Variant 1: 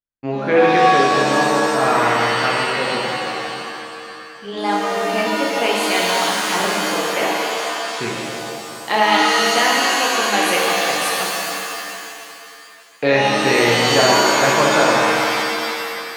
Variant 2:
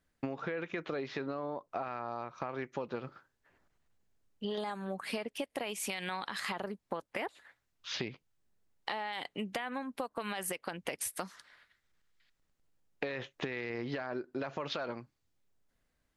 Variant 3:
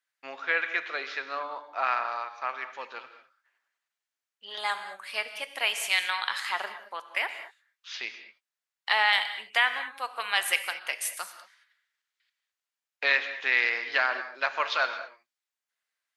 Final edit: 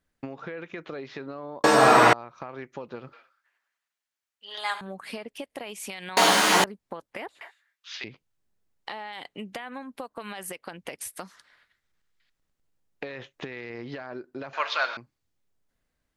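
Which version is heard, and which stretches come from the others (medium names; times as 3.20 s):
2
1.64–2.13 s: from 1
3.13–4.81 s: from 3
6.17–6.64 s: from 1
7.41–8.04 s: from 3
14.53–14.97 s: from 3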